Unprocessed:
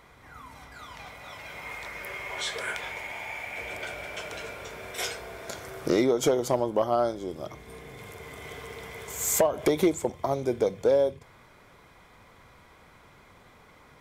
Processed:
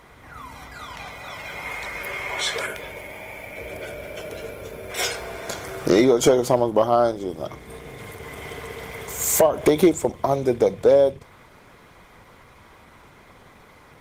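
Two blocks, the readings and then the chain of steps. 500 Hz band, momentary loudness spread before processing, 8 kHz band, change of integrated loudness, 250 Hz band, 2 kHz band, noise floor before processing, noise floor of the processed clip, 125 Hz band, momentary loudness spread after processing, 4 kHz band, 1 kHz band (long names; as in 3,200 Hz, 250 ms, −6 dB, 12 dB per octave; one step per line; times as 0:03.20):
+6.5 dB, 19 LU, +5.0 dB, +7.5 dB, +7.0 dB, +4.5 dB, −55 dBFS, −50 dBFS, +6.5 dB, 20 LU, +6.0 dB, +6.5 dB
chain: gain on a spectral selection 0:02.67–0:04.90, 650–9,500 Hz −9 dB
level +7 dB
Opus 20 kbit/s 48,000 Hz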